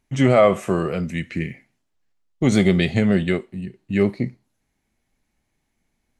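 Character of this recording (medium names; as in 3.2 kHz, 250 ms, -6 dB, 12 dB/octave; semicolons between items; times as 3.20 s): noise floor -74 dBFS; spectral tilt -6.5 dB/octave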